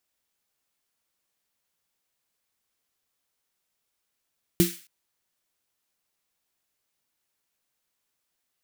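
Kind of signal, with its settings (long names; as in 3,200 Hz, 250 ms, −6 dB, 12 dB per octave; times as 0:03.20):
synth snare length 0.27 s, tones 180 Hz, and 340 Hz, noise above 1,700 Hz, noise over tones −8.5 dB, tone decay 0.21 s, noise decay 0.44 s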